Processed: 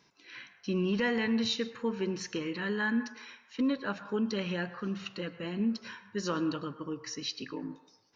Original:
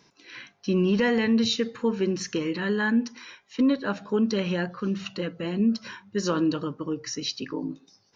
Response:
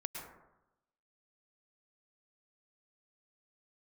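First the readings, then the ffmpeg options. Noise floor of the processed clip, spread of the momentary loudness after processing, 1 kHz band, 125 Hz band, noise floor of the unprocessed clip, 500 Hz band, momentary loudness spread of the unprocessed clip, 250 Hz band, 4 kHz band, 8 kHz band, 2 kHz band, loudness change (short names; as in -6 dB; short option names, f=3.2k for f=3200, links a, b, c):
-64 dBFS, 13 LU, -5.0 dB, -7.0 dB, -64 dBFS, -7.5 dB, 13 LU, -7.5 dB, -5.0 dB, n/a, -4.0 dB, -7.0 dB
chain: -filter_complex "[0:a]asplit=2[a][b];[b]highpass=780,lowpass=4.9k[c];[1:a]atrim=start_sample=2205[d];[c][d]afir=irnorm=-1:irlink=0,volume=-5dB[e];[a][e]amix=inputs=2:normalize=0,volume=-7dB"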